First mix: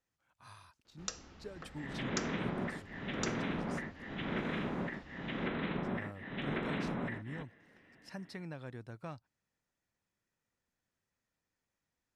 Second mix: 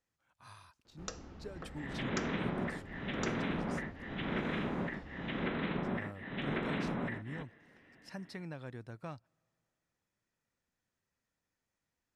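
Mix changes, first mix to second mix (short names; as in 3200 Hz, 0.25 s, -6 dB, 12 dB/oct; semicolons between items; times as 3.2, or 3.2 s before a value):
first sound: add tilt shelf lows +6 dB, about 1400 Hz; reverb: on, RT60 2.8 s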